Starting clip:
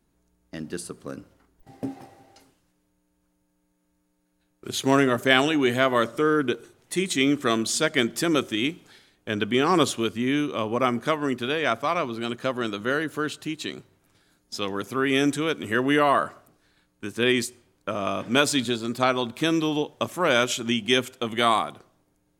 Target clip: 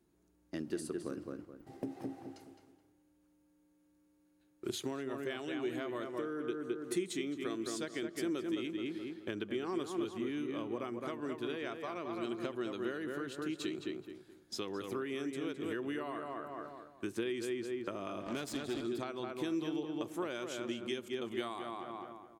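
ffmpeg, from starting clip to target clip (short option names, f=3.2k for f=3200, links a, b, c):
-filter_complex "[0:a]asplit=2[a][b];[b]adelay=213,lowpass=f=2.6k:p=1,volume=-5dB,asplit=2[c][d];[d]adelay=213,lowpass=f=2.6k:p=1,volume=0.32,asplit=2[e][f];[f]adelay=213,lowpass=f=2.6k:p=1,volume=0.32,asplit=2[g][h];[h]adelay=213,lowpass=f=2.6k:p=1,volume=0.32[i];[a][c][e][g][i]amix=inputs=5:normalize=0,acompressor=threshold=-32dB:ratio=16,equalizer=f=350:w=3.2:g=10,asettb=1/sr,asplit=3[j][k][l];[j]atrim=end=18.264[m];[k]atrim=start=18.26:end=18.81,asetpts=PTS-STARTPTS,afade=t=in:d=0.004:c=qsin,afade=t=out:st=0.546:d=0.004:c=qsin,aeval=exprs='0.0944*(cos(1*acos(clip(val(0)/0.0944,-1,1)))-cos(1*PI/2))+0.00944*(cos(8*acos(clip(val(0)/0.0944,-1,1)))-cos(8*PI/2))':c=same[n];[l]atrim=start=18.806[o];[m][n]acrossfade=d=0.004:c1=hsin:c2=qsin[p];[p][o]acrossfade=d=0.004:c1=qsin:c2=hsin,highpass=49,volume=-6dB"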